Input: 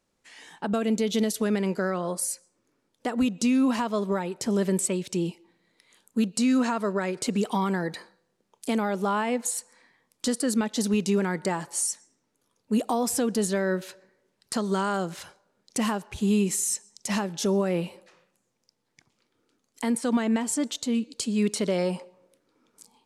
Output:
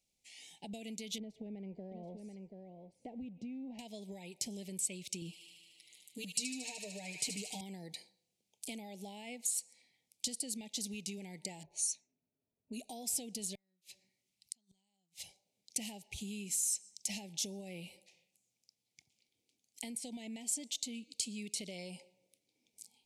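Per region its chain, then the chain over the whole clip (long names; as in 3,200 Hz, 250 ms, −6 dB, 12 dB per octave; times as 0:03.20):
0:01.18–0:03.79: mu-law and A-law mismatch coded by mu + low-pass filter 1,000 Hz + single-tap delay 733 ms −10 dB
0:05.21–0:07.61: comb filter 6.6 ms, depth 85% + delay with a high-pass on its return 75 ms, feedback 80%, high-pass 1,500 Hz, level −6 dB
0:11.63–0:12.90: low-pass that shuts in the quiet parts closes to 840 Hz, open at −21.5 dBFS + EQ curve with evenly spaced ripples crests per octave 1.5, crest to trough 9 dB
0:13.55–0:15.20: parametric band 490 Hz −13 dB 0.82 octaves + gate with flip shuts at −24 dBFS, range −38 dB
whole clip: downward compressor 4 to 1, threshold −29 dBFS; Chebyshev band-stop filter 790–2,200 Hz, order 3; guitar amp tone stack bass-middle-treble 5-5-5; level +4.5 dB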